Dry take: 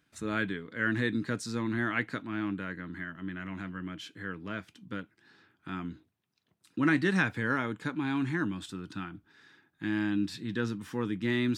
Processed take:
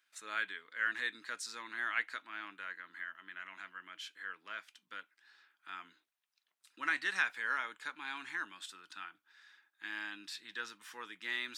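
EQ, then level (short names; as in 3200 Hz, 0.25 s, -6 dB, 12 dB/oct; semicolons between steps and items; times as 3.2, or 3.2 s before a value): HPF 1200 Hz 12 dB/oct; -1.5 dB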